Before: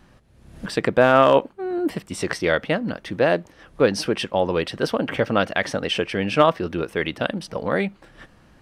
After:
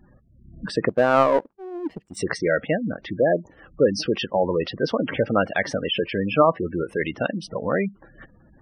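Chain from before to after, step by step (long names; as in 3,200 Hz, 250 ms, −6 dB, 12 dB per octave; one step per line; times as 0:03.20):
gate on every frequency bin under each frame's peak −15 dB strong
0:00.89–0:02.17: power curve on the samples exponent 1.4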